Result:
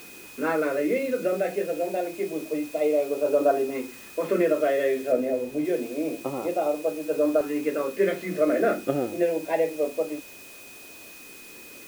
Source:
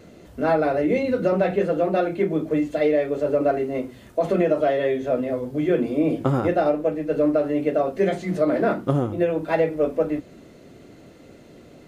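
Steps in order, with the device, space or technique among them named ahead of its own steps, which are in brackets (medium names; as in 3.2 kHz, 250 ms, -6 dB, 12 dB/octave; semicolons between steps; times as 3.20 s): shortwave radio (band-pass 330–2800 Hz; tremolo 0.24 Hz, depth 54%; LFO notch saw up 0.27 Hz 590–2300 Hz; whistle 2.5 kHz -49 dBFS; white noise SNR 21 dB); 5.12–5.65 s: tilt shelf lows +4.5 dB, about 1.4 kHz; trim +2 dB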